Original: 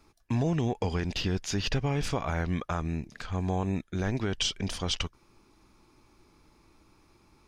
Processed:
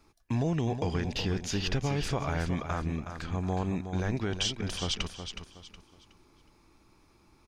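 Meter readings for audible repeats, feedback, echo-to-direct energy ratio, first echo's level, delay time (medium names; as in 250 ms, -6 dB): 3, 31%, -8.0 dB, -8.5 dB, 368 ms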